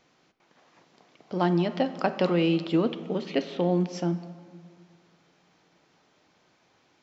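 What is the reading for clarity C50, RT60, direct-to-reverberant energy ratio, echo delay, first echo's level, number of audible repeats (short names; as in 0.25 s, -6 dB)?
12.5 dB, 2.0 s, 10.5 dB, none, none, none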